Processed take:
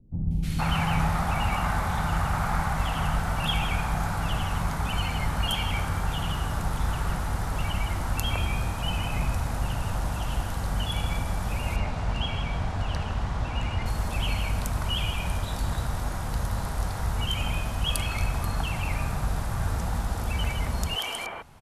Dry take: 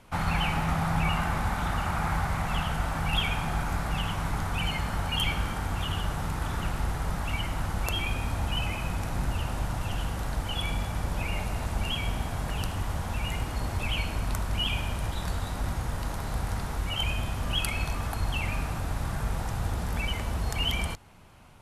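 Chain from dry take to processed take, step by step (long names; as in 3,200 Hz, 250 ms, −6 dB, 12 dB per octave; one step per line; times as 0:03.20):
0:11.45–0:13.55: low-pass filter 4,900 Hz 12 dB per octave
three-band delay without the direct sound lows, highs, mids 310/470 ms, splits 330/2,500 Hz
level +2.5 dB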